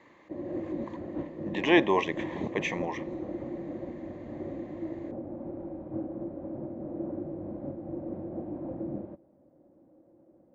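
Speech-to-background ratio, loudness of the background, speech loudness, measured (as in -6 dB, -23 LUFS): 9.5 dB, -38.0 LUFS, -28.5 LUFS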